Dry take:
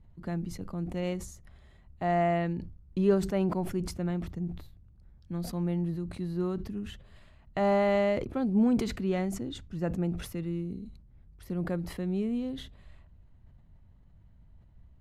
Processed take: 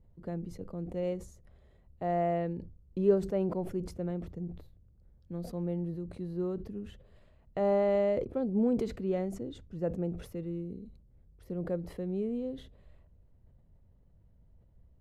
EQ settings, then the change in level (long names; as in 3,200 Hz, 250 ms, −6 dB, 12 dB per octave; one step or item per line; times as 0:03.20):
tilt shelving filter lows +3 dB, about 720 Hz
parametric band 490 Hz +11 dB 0.75 octaves
−8.0 dB